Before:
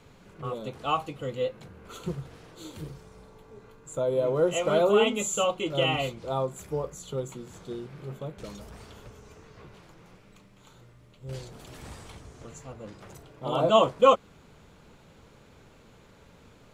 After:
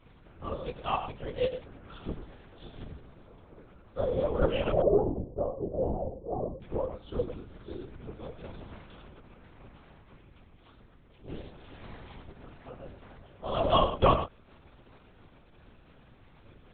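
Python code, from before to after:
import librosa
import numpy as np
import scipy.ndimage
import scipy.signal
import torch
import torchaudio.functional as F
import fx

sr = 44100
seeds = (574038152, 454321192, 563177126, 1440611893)

y = fx.chorus_voices(x, sr, voices=6, hz=1.2, base_ms=13, depth_ms=3.1, mix_pct=45)
y = fx.cheby2_lowpass(y, sr, hz=1900.0, order=4, stop_db=50, at=(4.7, 6.61), fade=0.02)
y = y + 10.0 ** (-10.5 / 20.0) * np.pad(y, (int(104 * sr / 1000.0), 0))[:len(y)]
y = fx.lpc_vocoder(y, sr, seeds[0], excitation='whisper', order=8)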